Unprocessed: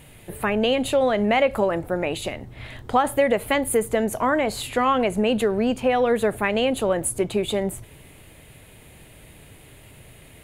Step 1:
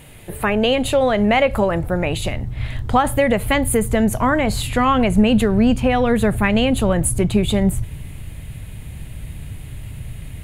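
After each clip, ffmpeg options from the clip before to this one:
-af "asubboost=boost=6.5:cutoff=160,volume=4.5dB"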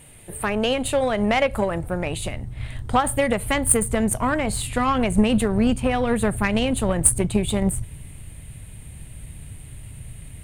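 -af "equalizer=f=8.8k:t=o:w=0.24:g=15,aeval=exprs='1.12*(cos(1*acos(clip(val(0)/1.12,-1,1)))-cos(1*PI/2))+0.0631*(cos(7*acos(clip(val(0)/1.12,-1,1)))-cos(7*PI/2))':c=same,volume=-2.5dB"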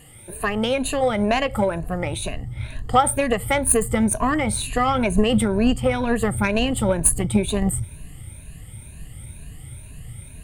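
-af "afftfilt=real='re*pow(10,13/40*sin(2*PI*(1.5*log(max(b,1)*sr/1024/100)/log(2)-(2.1)*(pts-256)/sr)))':imag='im*pow(10,13/40*sin(2*PI*(1.5*log(max(b,1)*sr/1024/100)/log(2)-(2.1)*(pts-256)/sr)))':win_size=1024:overlap=0.75,volume=-1dB"

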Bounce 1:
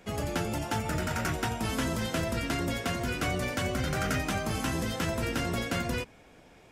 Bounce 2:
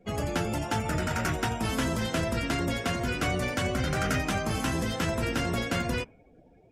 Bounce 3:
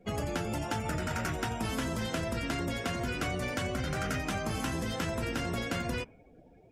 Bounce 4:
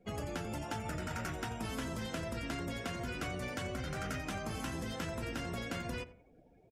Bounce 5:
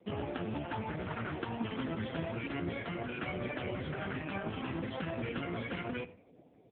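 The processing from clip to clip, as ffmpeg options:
-af "afftdn=nr=23:nf=-50,volume=2dB"
-af "acompressor=threshold=-30dB:ratio=4"
-filter_complex "[0:a]asplit=2[a][b];[b]adelay=87,lowpass=f=1.6k:p=1,volume=-15dB,asplit=2[c][d];[d]adelay=87,lowpass=f=1.6k:p=1,volume=0.33,asplit=2[e][f];[f]adelay=87,lowpass=f=1.6k:p=1,volume=0.33[g];[a][c][e][g]amix=inputs=4:normalize=0,volume=-6dB"
-af "volume=5.5dB" -ar 8000 -c:a libopencore_amrnb -b:a 4750

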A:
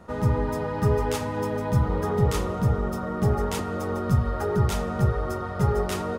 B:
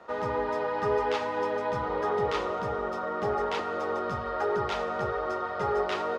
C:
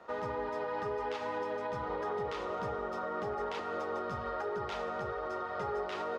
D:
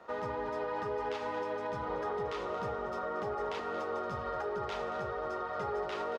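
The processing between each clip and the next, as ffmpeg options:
-filter_complex "[0:a]acrossover=split=4800[a][b];[b]acompressor=threshold=-48dB:ratio=4:attack=1:release=60[c];[a][c]amix=inputs=2:normalize=0,acrossover=split=360 5700:gain=0.0794 1 0.0794[d][e][f];[d][e][f]amix=inputs=3:normalize=0,volume=2dB"
-af "alimiter=limit=-24dB:level=0:latency=1:release=136,volume=-3.5dB"
-af "aecho=1:1:229:0.237"

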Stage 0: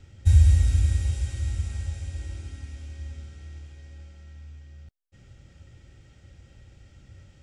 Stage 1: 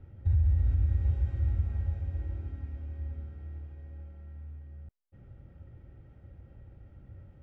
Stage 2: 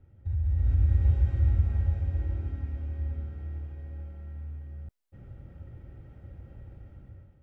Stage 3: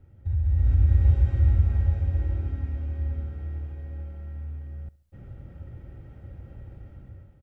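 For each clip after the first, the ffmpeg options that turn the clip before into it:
-af "lowpass=1.1k,alimiter=limit=-19dB:level=0:latency=1:release=174"
-af "dynaudnorm=f=250:g=5:m=12dB,volume=-7dB"
-af "aecho=1:1:69|138|207:0.0891|0.0419|0.0197,volume=3.5dB"

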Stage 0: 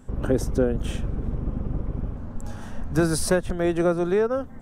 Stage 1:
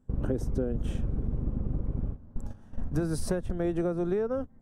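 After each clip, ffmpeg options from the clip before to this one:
-af "agate=range=-17dB:threshold=-28dB:ratio=16:detection=peak,tiltshelf=f=690:g=5,acompressor=threshold=-22dB:ratio=6,volume=-3dB"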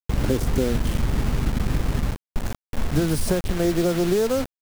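-filter_complex "[0:a]asplit=2[a][b];[b]alimiter=level_in=3.5dB:limit=-24dB:level=0:latency=1:release=355,volume=-3.5dB,volume=-2dB[c];[a][c]amix=inputs=2:normalize=0,acrusher=bits=5:mix=0:aa=0.000001,volume=5dB"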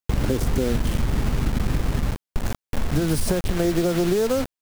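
-af "acompressor=threshold=-21dB:ratio=6,volume=4dB"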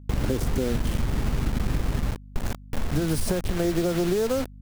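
-af "aeval=exprs='val(0)+0.01*(sin(2*PI*50*n/s)+sin(2*PI*2*50*n/s)/2+sin(2*PI*3*50*n/s)/3+sin(2*PI*4*50*n/s)/4+sin(2*PI*5*50*n/s)/5)':c=same,volume=-3dB"

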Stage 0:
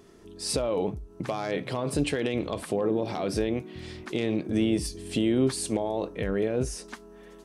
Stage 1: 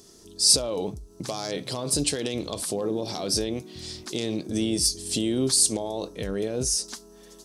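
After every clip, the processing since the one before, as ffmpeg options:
-af "highshelf=f=3.4k:t=q:w=1.5:g=13.5,volume=-1.5dB"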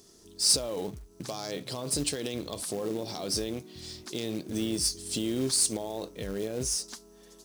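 -af "acrusher=bits=4:mode=log:mix=0:aa=0.000001,volume=-5dB"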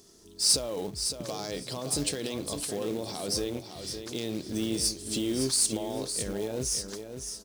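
-af "aecho=1:1:560|1120|1680:0.398|0.0637|0.0102"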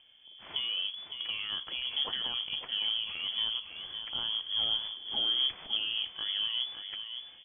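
-af "lowpass=f=3k:t=q:w=0.5098,lowpass=f=3k:t=q:w=0.6013,lowpass=f=3k:t=q:w=0.9,lowpass=f=3k:t=q:w=2.563,afreqshift=-3500"

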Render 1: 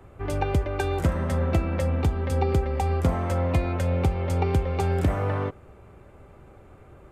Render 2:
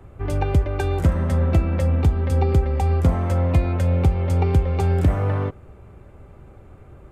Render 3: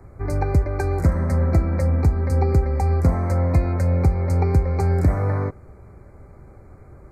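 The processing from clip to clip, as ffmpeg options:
-af "lowshelf=f=230:g=7"
-af "asuperstop=centerf=3100:order=12:qfactor=1.9"

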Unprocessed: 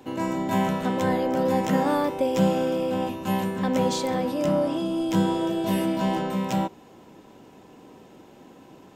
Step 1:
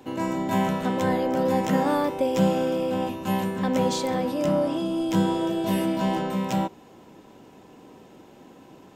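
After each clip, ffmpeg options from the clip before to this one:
-af anull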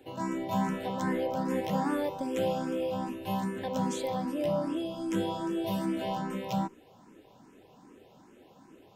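-filter_complex "[0:a]asplit=2[a][b];[b]afreqshift=2.5[c];[a][c]amix=inputs=2:normalize=1,volume=-4dB"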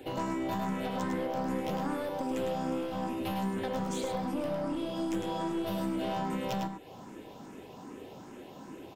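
-af "acompressor=threshold=-39dB:ratio=6,aeval=exprs='clip(val(0),-1,0.00891)':c=same,aecho=1:1:104:0.531,volume=8dB"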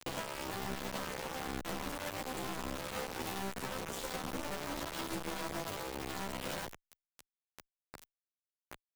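-filter_complex "[0:a]acompressor=threshold=-38dB:ratio=5,acrusher=bits=5:mix=0:aa=0.000001,asplit=2[a][b];[b]adelay=11.9,afreqshift=1.1[c];[a][c]amix=inputs=2:normalize=1,volume=4dB"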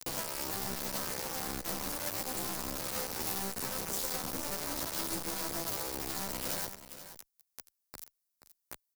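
-filter_complex "[0:a]asplit=2[a][b];[b]asoftclip=type=hard:threshold=-37.5dB,volume=-5.5dB[c];[a][c]amix=inputs=2:normalize=0,aexciter=amount=1.8:drive=8.8:freq=4.4k,aecho=1:1:479:0.224,volume=-3dB"

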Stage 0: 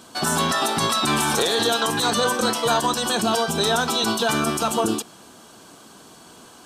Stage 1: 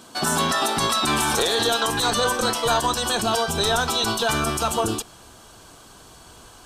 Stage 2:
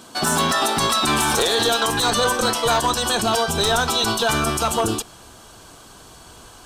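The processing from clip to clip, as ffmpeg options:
-af "asubboost=boost=12:cutoff=63"
-af "aeval=exprs='clip(val(0),-1,0.158)':c=same,volume=2.5dB"

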